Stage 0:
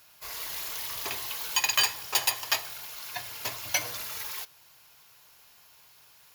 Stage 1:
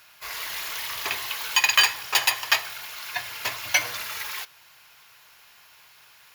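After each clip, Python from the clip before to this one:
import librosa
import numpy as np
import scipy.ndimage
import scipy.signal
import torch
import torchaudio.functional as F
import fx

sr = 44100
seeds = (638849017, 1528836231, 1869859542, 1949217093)

y = fx.peak_eq(x, sr, hz=1900.0, db=9.5, octaves=2.3)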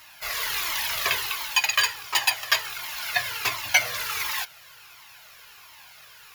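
y = fx.rider(x, sr, range_db=4, speed_s=0.5)
y = fx.comb_cascade(y, sr, direction='falling', hz=1.4)
y = y * 10.0 ** (5.0 / 20.0)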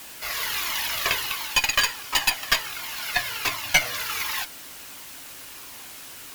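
y = fx.dmg_noise_colour(x, sr, seeds[0], colour='white', level_db=-42.0)
y = fx.cheby_harmonics(y, sr, harmonics=(4,), levels_db=(-16,), full_scale_db=-4.5)
y = fx.small_body(y, sr, hz=(280.0, 2900.0), ring_ms=85, db=7)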